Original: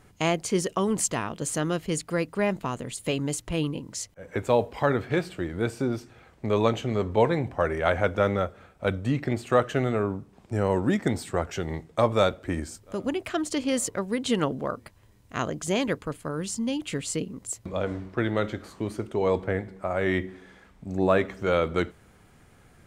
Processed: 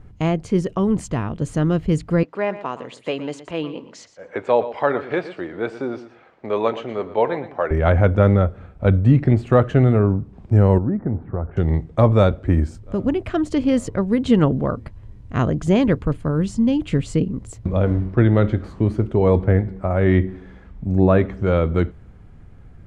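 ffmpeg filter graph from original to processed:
-filter_complex "[0:a]asettb=1/sr,asplit=3[s0][s1][s2];[s0]atrim=end=2.234[s3];[s1]atrim=start=2.23:end=7.71,asetpts=PTS-STARTPTS,afade=t=in:d=0.004:c=qsin,afade=t=out:st=5.476:d=0.004:c=qsin,highpass=510,lowpass=5600,aecho=1:1:119|238:0.2|0.0319,atrim=end_sample=241668[s4];[s2]atrim=start=7.706[s5];[s3][s4]acrossfade=d=0.004:c1=hsin:c2=qsin[s6];[s6][s5]acrossfade=d=0.004:c1=qsin:c2=hsin,asettb=1/sr,asplit=3[s7][s8][s9];[s7]atrim=end=10.784[s10];[s8]atrim=start=10.78:end=11.57,asetpts=PTS-STARTPTS,afade=t=in:d=0.004:c=qsin,afade=t=out:st=0.786:d=0.004:c=qsin,lowpass=f=1400:w=0.5412,lowpass=f=1400:w=1.3066,acompressor=threshold=0.00794:ratio=1.5:attack=3.2:release=140:knee=1:detection=peak[s11];[s9]atrim=start=11.566[s12];[s10][s11]acrossfade=d=0.004:c1=hsin:c2=qsin[s13];[s13][s12]acrossfade=d=0.004:c1=qsin:c2=hsin,aemphasis=mode=reproduction:type=riaa,dynaudnorm=f=300:g=13:m=2"

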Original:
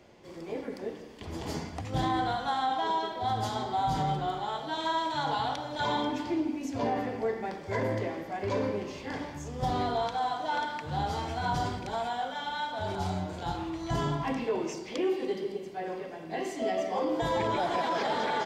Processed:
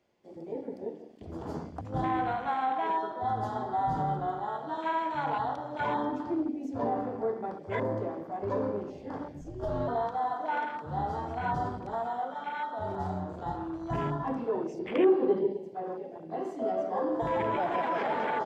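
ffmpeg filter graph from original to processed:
-filter_complex "[0:a]asettb=1/sr,asplit=3[s0][s1][s2];[s0]atrim=end=9.414[s3];[s1]atrim=start=9.41:end=9.88,asetpts=PTS-STARTPTS,afade=t=in:d=0.004:c=qsin,afade=t=out:st=0.466:d=0.004:c=qsin,aecho=1:1:4.5:0.35,atrim=end_sample=20727,afreqshift=-130[s4];[s2]atrim=start=9.876[s5];[s3][s4]acrossfade=d=0.004:c1=hsin:c2=qsin[s6];[s6][s5]acrossfade=d=0.004:c1=qsin:c2=hsin,asettb=1/sr,asplit=3[s7][s8][s9];[s7]atrim=end=14.794[s10];[s8]atrim=start=14.79:end=15.53,asetpts=PTS-STARTPTS,afade=t=in:d=0.004:c=qsin,afade=t=out:st=0.736:d=0.004:c=qsin,lowpass=3000,acontrast=75[s11];[s9]atrim=start=15.526[s12];[s10][s11]acrossfade=d=0.004:c1=hsin:c2=qsin[s13];[s13][s12]acrossfade=d=0.004:c1=qsin:c2=hsin,afwtdn=0.0141,lowshelf=f=110:g=-6"

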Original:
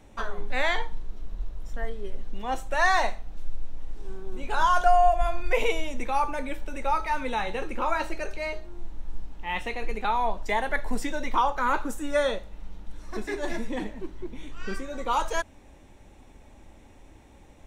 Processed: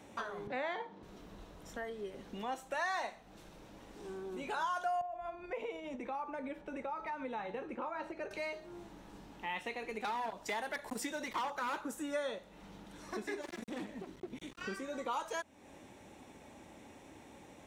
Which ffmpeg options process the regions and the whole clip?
-filter_complex "[0:a]asettb=1/sr,asplit=3[s0][s1][s2];[s0]atrim=end=0.474[s3];[s1]atrim=start=0.47:end=1.03,asetpts=PTS-STARTPTS,afade=t=in:d=0.004:c=qsin,afade=t=out:st=0.556:d=0.004:c=qsin,highpass=190,lowpass=5500,tiltshelf=f=1200:g=6.5[s4];[s2]atrim=start=1.026[s5];[s3][s4]acrossfade=d=0.004:c1=hsin:c2=qsin[s6];[s6][s5]acrossfade=d=0.004:c1=qsin:c2=hsin,asettb=1/sr,asplit=3[s7][s8][s9];[s7]atrim=end=5.014[s10];[s8]atrim=start=5.01:end=8.31,asetpts=PTS-STARTPTS,afade=t=in:d=0.004:c=qsin,afade=t=out:st=3.296:d=0.004:c=qsin,lowpass=f=1200:p=1,acompressor=threshold=0.0398:ratio=2.5:attack=3.2:release=140:knee=1:detection=peak[s11];[s9]atrim=start=8.306[s12];[s10][s11]acrossfade=d=0.004:c1=hsin:c2=qsin[s13];[s13][s12]acrossfade=d=0.004:c1=qsin:c2=hsin,asettb=1/sr,asplit=3[s14][s15][s16];[s14]atrim=end=10.004[s17];[s15]atrim=start=10:end=11.81,asetpts=PTS-STARTPTS,afade=t=in:d=0.004:c=qsin,afade=t=out:st=1.806:d=0.004:c=qsin,highshelf=f=4100:g=6,asoftclip=type=hard:threshold=0.0841[s18];[s16]atrim=start=11.806[s19];[s17][s18]acrossfade=d=0.004:c1=hsin:c2=qsin[s20];[s20][s19]acrossfade=d=0.004:c1=qsin:c2=hsin,asettb=1/sr,asplit=3[s21][s22][s23];[s21]atrim=end=13.414[s24];[s22]atrim=start=13.41:end=14.61,asetpts=PTS-STARTPTS,afade=t=in:d=0.004:c=qsin,afade=t=out:st=1.196:d=0.004:c=qsin,equalizer=f=960:t=o:w=2.7:g=-4.5,asoftclip=type=hard:threshold=0.0251[s25];[s23]atrim=start=14.606[s26];[s24][s25]acrossfade=d=0.004:c1=hsin:c2=qsin[s27];[s27][s26]acrossfade=d=0.004:c1=qsin:c2=hsin,highpass=150,acompressor=threshold=0.00794:ratio=2.5,volume=1.12"

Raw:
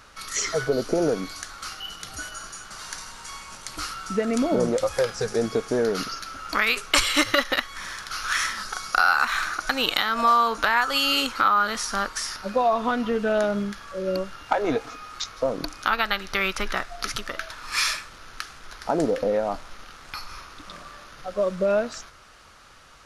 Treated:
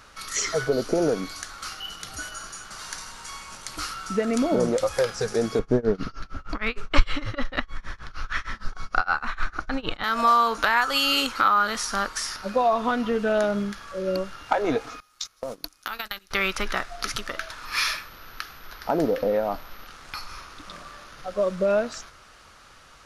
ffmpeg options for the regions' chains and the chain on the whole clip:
-filter_complex "[0:a]asettb=1/sr,asplit=3[s0][s1][s2];[s0]atrim=end=5.594[s3];[s1]atrim=start=5.59:end=10.04,asetpts=PTS-STARTPTS,afade=t=in:d=0.004:c=qsin,afade=t=out:st=4.446:d=0.004:c=qsin,acrossover=split=5800[s4][s5];[s5]acompressor=threshold=0.00891:ratio=4:attack=1:release=60[s6];[s4][s6]amix=inputs=2:normalize=0,aemphasis=mode=reproduction:type=riaa,tremolo=f=6.5:d=0.96[s7];[s2]atrim=start=10.036[s8];[s3][s7]acrossfade=d=0.004:c1=hsin:c2=qsin[s9];[s9][s8]acrossfade=d=0.004:c1=qsin:c2=hsin,asettb=1/sr,asplit=3[s10][s11][s12];[s10]atrim=end=15.004[s13];[s11]atrim=start=15:end=16.31,asetpts=PTS-STARTPTS,afade=t=in:d=0.004:c=qsin,afade=t=out:st=1.306:d=0.004:c=qsin,aemphasis=mode=production:type=75fm,agate=range=0.0708:threshold=0.0398:ratio=16:release=100:detection=peak,acompressor=threshold=0.0447:ratio=10:attack=3.2:release=140:knee=1:detection=peak[s14];[s12]atrim=start=16.306[s15];[s13][s14]acrossfade=d=0.004:c1=hsin:c2=qsin[s16];[s16][s15]acrossfade=d=0.004:c1=qsin:c2=hsin,asettb=1/sr,asplit=3[s17][s18][s19];[s17]atrim=end=17.654[s20];[s18]atrim=start=17.65:end=19.87,asetpts=PTS-STARTPTS,afade=t=in:d=0.004:c=qsin,afade=t=out:st=2.216:d=0.004:c=qsin,equalizer=f=7800:t=o:w=0.43:g=-14,aeval=exprs='val(0)+0.00224*sin(2*PI*12000*n/s)':c=same,asoftclip=type=hard:threshold=0.237[s21];[s19]atrim=start=19.866[s22];[s20][s21]acrossfade=d=0.004:c1=hsin:c2=qsin[s23];[s23][s22]acrossfade=d=0.004:c1=qsin:c2=hsin"

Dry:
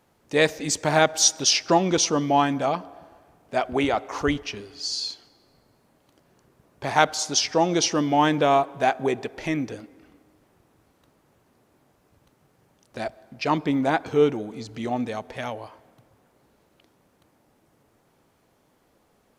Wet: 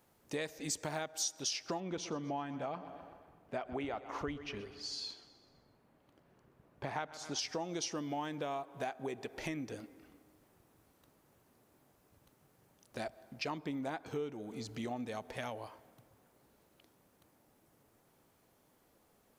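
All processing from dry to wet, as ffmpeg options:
-filter_complex "[0:a]asettb=1/sr,asplit=3[s0][s1][s2];[s0]atrim=end=1.804[s3];[s1]atrim=start=1.8:end=7.39,asetpts=PTS-STARTPTS,afade=t=in:d=0.004:c=qsin,afade=t=out:st=5.586:d=0.004:c=qsin,bass=f=250:g=1,treble=f=4000:g=-13,aecho=1:1:126|252|378|504|630:0.126|0.068|0.0367|0.0198|0.0107,atrim=end_sample=246519[s4];[s2]atrim=start=7.386[s5];[s3][s4]acrossfade=d=0.004:c1=hsin:c2=qsin[s6];[s6][s5]acrossfade=d=0.004:c1=qsin:c2=hsin,acompressor=threshold=0.0316:ratio=6,highshelf=f=10000:g=11,volume=0.473"

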